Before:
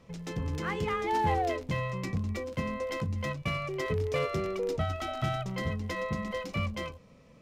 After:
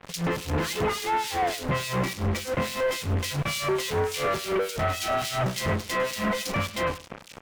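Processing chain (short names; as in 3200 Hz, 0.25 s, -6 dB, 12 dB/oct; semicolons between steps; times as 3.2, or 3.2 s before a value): low shelf 260 Hz -7 dB; in parallel at 0 dB: compressor, threshold -42 dBFS, peak gain reduction 15.5 dB; on the sum: fuzz box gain 52 dB, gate -49 dBFS; harmonic tremolo 3.5 Hz, depth 100%, crossover 2500 Hz; echo 0.102 s -18.5 dB; gain -8.5 dB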